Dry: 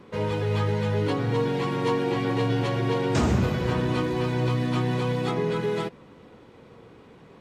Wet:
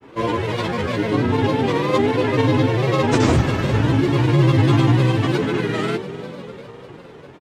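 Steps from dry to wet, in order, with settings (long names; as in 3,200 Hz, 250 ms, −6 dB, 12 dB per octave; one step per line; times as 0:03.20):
coupled-rooms reverb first 0.25 s, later 4.9 s, from −21 dB, DRR −8 dB
granular cloud, pitch spread up and down by 3 semitones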